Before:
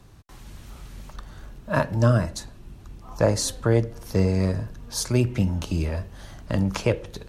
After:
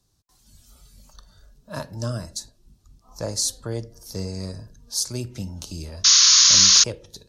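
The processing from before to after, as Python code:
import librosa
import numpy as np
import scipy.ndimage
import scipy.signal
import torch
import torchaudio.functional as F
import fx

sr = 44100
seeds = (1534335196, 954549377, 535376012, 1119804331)

y = fx.spec_paint(x, sr, seeds[0], shape='noise', start_s=6.04, length_s=0.8, low_hz=1000.0, high_hz=6900.0, level_db=-15.0)
y = fx.high_shelf_res(y, sr, hz=3400.0, db=11.5, q=1.5)
y = fx.noise_reduce_blind(y, sr, reduce_db=10)
y = F.gain(torch.from_numpy(y), -9.5).numpy()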